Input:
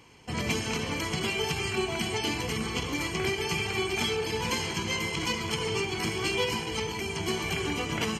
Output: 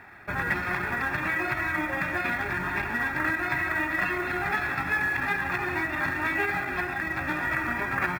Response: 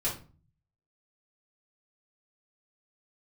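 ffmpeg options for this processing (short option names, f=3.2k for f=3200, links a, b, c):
-filter_complex "[0:a]lowpass=f=1.8k:t=q:w=2.8,asetrate=36028,aresample=44100,atempo=1.22405,tiltshelf=f=970:g=-5.5,aecho=1:1:183:0.15,asplit=2[a][b];[b]acompressor=threshold=-36dB:ratio=12,volume=3dB[c];[a][c]amix=inputs=2:normalize=0,acrusher=bits=6:mode=log:mix=0:aa=0.000001,volume=-2dB"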